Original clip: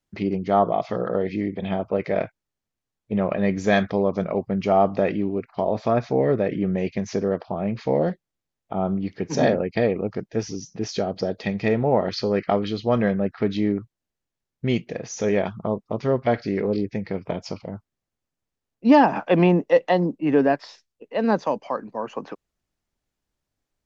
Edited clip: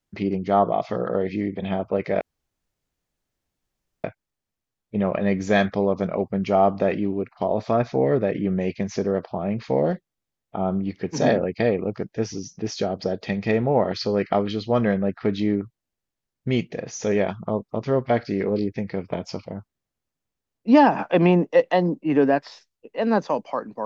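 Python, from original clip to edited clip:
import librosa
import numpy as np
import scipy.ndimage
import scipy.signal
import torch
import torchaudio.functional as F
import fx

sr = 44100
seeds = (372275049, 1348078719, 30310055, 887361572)

y = fx.edit(x, sr, fx.insert_room_tone(at_s=2.21, length_s=1.83), tone=tone)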